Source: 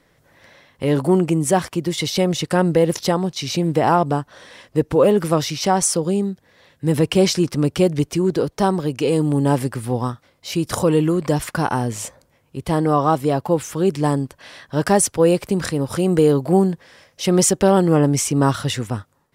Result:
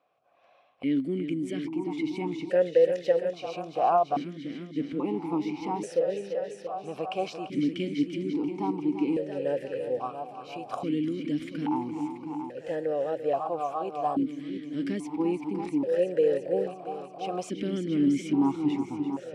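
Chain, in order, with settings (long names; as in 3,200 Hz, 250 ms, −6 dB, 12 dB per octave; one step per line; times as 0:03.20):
on a send: echo machine with several playback heads 341 ms, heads first and second, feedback 58%, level −11 dB
on the sum: formant filter that steps through the vowels 1.2 Hz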